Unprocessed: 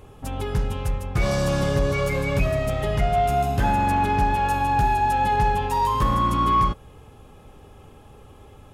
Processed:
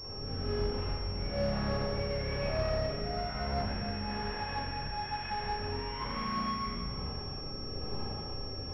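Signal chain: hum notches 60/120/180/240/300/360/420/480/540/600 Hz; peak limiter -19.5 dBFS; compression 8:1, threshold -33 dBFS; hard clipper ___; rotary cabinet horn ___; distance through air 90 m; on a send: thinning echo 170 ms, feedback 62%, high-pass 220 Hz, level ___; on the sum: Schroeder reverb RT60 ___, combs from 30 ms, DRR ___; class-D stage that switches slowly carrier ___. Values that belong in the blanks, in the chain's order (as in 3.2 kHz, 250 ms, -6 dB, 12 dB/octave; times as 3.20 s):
-38.5 dBFS, 1.1 Hz, -20.5 dB, 1.6 s, -9 dB, 5.5 kHz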